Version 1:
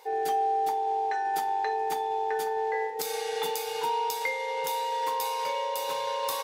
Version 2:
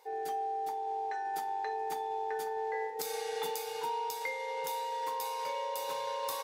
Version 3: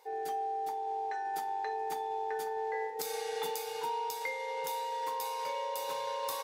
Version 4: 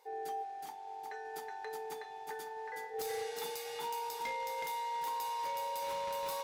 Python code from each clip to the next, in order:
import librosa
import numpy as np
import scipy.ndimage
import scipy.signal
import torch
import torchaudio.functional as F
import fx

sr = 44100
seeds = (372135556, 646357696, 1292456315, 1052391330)

y1 = fx.peak_eq(x, sr, hz=3000.0, db=-2.5, octaves=0.77)
y1 = fx.rider(y1, sr, range_db=10, speed_s=0.5)
y1 = F.gain(torch.from_numpy(y1), -6.5).numpy()
y2 = y1
y3 = y2 + 10.0 ** (-3.0 / 20.0) * np.pad(y2, (int(370 * sr / 1000.0), 0))[:len(y2)]
y3 = 10.0 ** (-28.0 / 20.0) * (np.abs((y3 / 10.0 ** (-28.0 / 20.0) + 3.0) % 4.0 - 2.0) - 1.0)
y3 = F.gain(torch.from_numpy(y3), -4.0).numpy()